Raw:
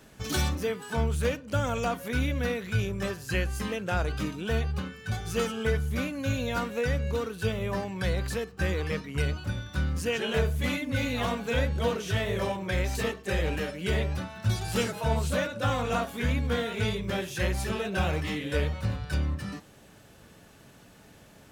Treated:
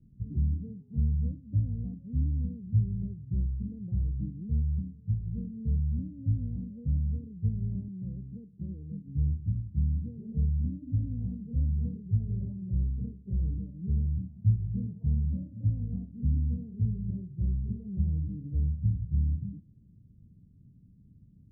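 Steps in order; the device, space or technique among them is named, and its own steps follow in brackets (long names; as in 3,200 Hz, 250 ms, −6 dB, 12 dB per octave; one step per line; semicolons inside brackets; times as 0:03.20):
the neighbour's flat through the wall (low-pass filter 210 Hz 24 dB per octave; parametric band 100 Hz +3.5 dB 0.82 octaves)
0:07.88–0:09.07: high-pass filter 170 Hz 12 dB per octave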